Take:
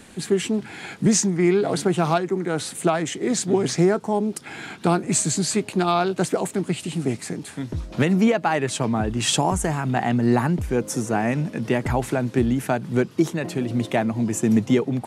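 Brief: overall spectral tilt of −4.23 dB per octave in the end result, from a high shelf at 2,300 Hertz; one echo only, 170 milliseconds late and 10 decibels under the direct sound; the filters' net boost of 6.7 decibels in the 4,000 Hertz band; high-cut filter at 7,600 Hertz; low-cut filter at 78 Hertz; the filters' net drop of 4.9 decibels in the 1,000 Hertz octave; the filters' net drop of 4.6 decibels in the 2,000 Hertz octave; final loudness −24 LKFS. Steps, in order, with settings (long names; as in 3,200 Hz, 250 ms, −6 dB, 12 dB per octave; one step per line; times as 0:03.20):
high-pass filter 78 Hz
low-pass filter 7,600 Hz
parametric band 1,000 Hz −6.5 dB
parametric band 2,000 Hz −8.5 dB
high-shelf EQ 2,300 Hz +4.5 dB
parametric band 4,000 Hz +7.5 dB
single-tap delay 170 ms −10 dB
level −2 dB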